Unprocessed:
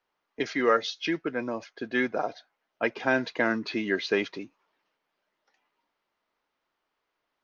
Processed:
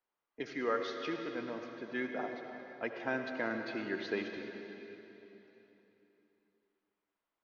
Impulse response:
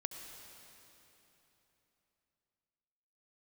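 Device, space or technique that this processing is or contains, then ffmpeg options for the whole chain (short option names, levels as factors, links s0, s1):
swimming-pool hall: -filter_complex "[1:a]atrim=start_sample=2205[s0];[0:a][s0]afir=irnorm=-1:irlink=0,highshelf=f=4300:g=-6.5,volume=0.398"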